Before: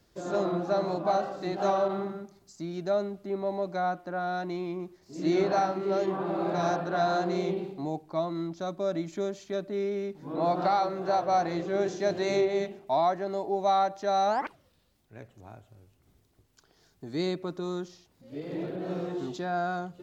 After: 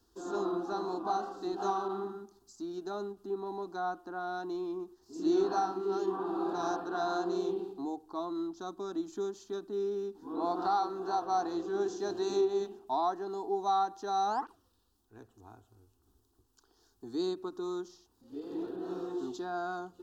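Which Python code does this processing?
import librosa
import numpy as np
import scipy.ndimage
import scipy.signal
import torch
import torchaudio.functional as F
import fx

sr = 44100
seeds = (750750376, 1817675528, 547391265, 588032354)

y = fx.fixed_phaser(x, sr, hz=580.0, stages=6)
y = fx.end_taper(y, sr, db_per_s=340.0)
y = F.gain(torch.from_numpy(y), -1.5).numpy()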